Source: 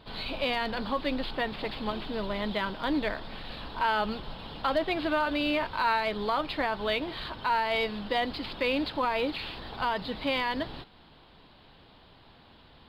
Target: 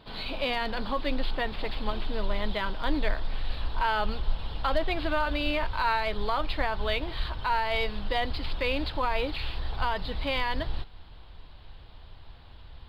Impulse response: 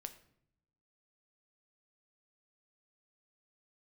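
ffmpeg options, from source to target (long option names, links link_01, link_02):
-af "asubboost=boost=9:cutoff=71"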